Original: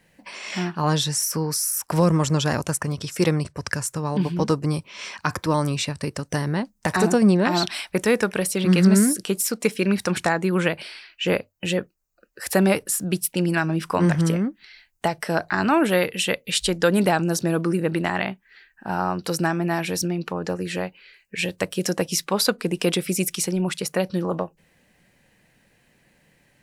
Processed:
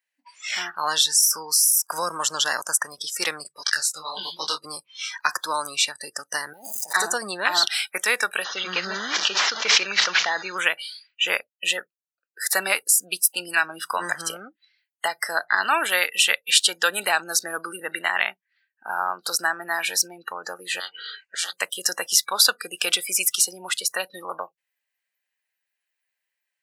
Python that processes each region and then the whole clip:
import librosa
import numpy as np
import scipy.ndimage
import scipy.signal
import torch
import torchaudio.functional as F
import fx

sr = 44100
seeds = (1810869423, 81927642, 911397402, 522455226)

y = fx.chain(x, sr, fx.peak_eq(hz=3800.0, db=14.0, octaves=1.1),
    fx.detune_double(cents=52), at=(3.55, 4.65))
y = fx.chain(y, sr, fx.zero_step(step_db=-29.0),
    fx.over_compress(threshold_db=-30.0, ratio=-1.0),
    fx.peak_eq(hz=1600.0, db=-11.0, octaves=0.93), at=(6.53, 6.93))
y = fx.chain(y, sr, fx.delta_mod(bps=32000, step_db=-33.0),
    fx.sustainer(db_per_s=41.0), at=(8.44, 10.58))
y = fx.chain(y, sr, fx.spacing_loss(db_at_10k=24),
    fx.spectral_comp(ratio=10.0), at=(20.8, 21.53))
y = fx.noise_reduce_blind(y, sr, reduce_db=26)
y = scipy.signal.sosfilt(scipy.signal.butter(2, 1300.0, 'highpass', fs=sr, output='sos'), y)
y = F.gain(torch.from_numpy(y), 6.5).numpy()